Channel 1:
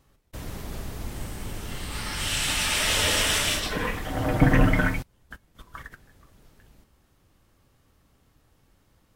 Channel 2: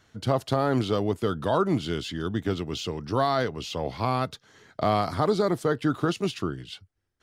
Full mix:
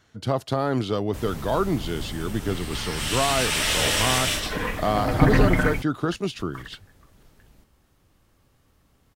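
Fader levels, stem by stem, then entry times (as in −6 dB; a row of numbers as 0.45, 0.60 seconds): +0.5, 0.0 decibels; 0.80, 0.00 seconds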